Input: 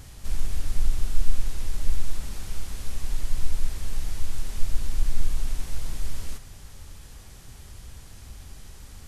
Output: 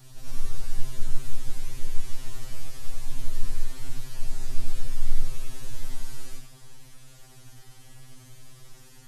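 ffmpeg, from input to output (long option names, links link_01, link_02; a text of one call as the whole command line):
ffmpeg -i in.wav -af "afftfilt=real='re':imag='-im':win_size=8192:overlap=0.75,afftfilt=real='re*2.45*eq(mod(b,6),0)':imag='im*2.45*eq(mod(b,6),0)':win_size=2048:overlap=0.75,volume=4dB" out.wav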